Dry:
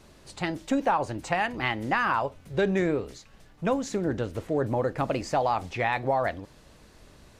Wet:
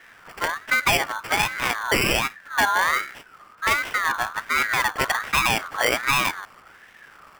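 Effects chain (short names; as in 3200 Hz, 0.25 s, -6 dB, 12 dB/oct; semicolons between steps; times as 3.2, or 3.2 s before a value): sample-and-hold 17×; ring modulator with a swept carrier 1500 Hz, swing 20%, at 1.3 Hz; gain +7 dB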